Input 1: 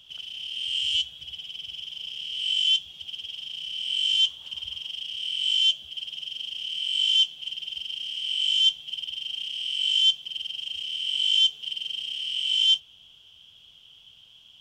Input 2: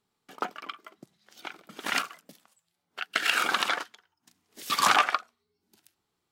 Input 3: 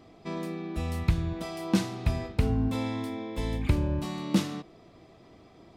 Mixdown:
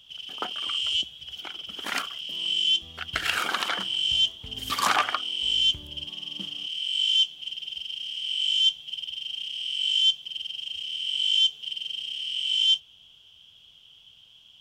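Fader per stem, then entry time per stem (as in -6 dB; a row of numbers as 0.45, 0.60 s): -1.0, -1.5, -19.5 dB; 0.00, 0.00, 2.05 s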